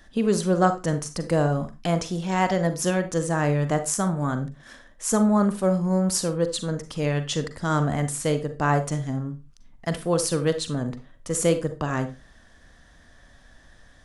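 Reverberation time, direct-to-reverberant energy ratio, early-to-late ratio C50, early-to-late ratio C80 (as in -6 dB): no single decay rate, 9.0 dB, 12.5 dB, 19.0 dB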